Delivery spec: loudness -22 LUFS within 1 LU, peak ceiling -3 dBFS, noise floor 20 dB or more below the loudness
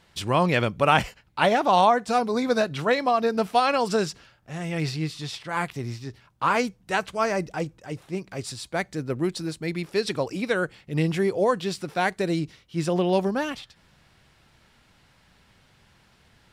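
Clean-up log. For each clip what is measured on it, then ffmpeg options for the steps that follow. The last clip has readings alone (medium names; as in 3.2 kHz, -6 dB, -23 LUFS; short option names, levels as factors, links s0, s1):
loudness -25.0 LUFS; peak level -4.5 dBFS; loudness target -22.0 LUFS
-> -af "volume=1.41,alimiter=limit=0.708:level=0:latency=1"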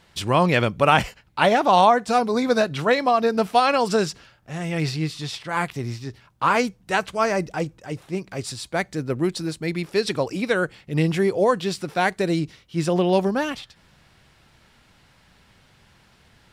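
loudness -22.0 LUFS; peak level -3.0 dBFS; noise floor -57 dBFS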